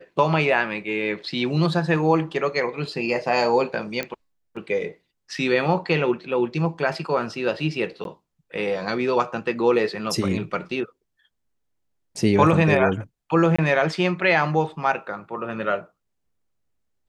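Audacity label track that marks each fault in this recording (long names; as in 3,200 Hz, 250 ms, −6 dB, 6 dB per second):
4.030000	4.030000	click −12 dBFS
8.040000	8.050000	drop-out 12 ms
13.560000	13.590000	drop-out 25 ms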